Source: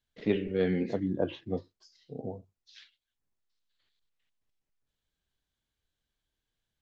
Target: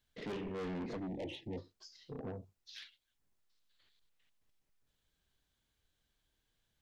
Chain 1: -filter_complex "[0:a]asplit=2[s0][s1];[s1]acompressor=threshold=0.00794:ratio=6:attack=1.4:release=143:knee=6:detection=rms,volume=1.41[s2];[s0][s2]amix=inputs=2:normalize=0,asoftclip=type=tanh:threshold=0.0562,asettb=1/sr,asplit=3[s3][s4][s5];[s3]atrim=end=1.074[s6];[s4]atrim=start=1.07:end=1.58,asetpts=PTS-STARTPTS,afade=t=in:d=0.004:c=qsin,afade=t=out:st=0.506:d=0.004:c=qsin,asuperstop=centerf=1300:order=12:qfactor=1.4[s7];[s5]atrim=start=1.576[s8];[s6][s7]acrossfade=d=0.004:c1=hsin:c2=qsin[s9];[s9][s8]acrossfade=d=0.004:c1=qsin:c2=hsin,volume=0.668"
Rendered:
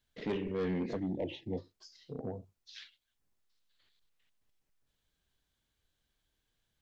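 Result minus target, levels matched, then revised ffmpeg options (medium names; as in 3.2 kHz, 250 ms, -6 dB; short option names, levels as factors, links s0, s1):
saturation: distortion -6 dB
-filter_complex "[0:a]asplit=2[s0][s1];[s1]acompressor=threshold=0.00794:ratio=6:attack=1.4:release=143:knee=6:detection=rms,volume=1.41[s2];[s0][s2]amix=inputs=2:normalize=0,asoftclip=type=tanh:threshold=0.0188,asettb=1/sr,asplit=3[s3][s4][s5];[s3]atrim=end=1.074[s6];[s4]atrim=start=1.07:end=1.58,asetpts=PTS-STARTPTS,afade=t=in:d=0.004:c=qsin,afade=t=out:st=0.506:d=0.004:c=qsin,asuperstop=centerf=1300:order=12:qfactor=1.4[s7];[s5]atrim=start=1.576[s8];[s6][s7]acrossfade=d=0.004:c1=hsin:c2=qsin[s9];[s9][s8]acrossfade=d=0.004:c1=qsin:c2=hsin,volume=0.668"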